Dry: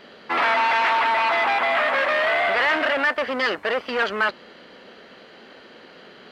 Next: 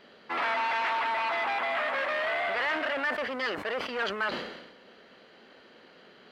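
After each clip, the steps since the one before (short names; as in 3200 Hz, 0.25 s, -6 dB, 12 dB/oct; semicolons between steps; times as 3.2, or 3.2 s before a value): sustainer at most 54 dB/s; gain -9 dB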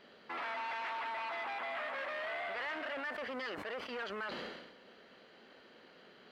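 limiter -29 dBFS, peak gain reduction 9 dB; gain -4.5 dB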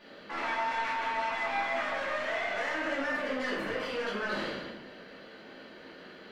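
soft clip -38 dBFS, distortion -16 dB; shoebox room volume 230 m³, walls mixed, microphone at 2.5 m; gain +1.5 dB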